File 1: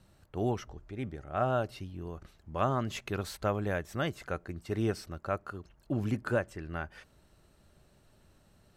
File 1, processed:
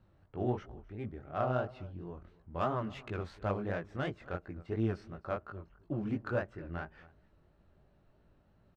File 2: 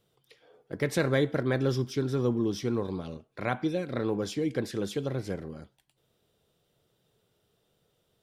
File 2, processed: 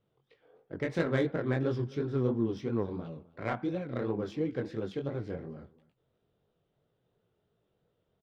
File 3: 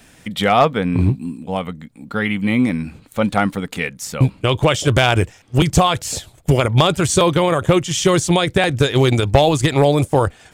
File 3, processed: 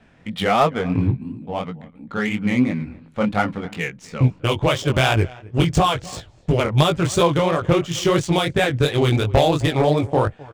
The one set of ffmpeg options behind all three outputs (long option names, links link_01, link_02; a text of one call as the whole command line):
ffmpeg -i in.wav -af "aecho=1:1:260:0.0841,flanger=delay=17.5:depth=6.7:speed=2.9,adynamicsmooth=sensitivity=3:basefreq=2400" out.wav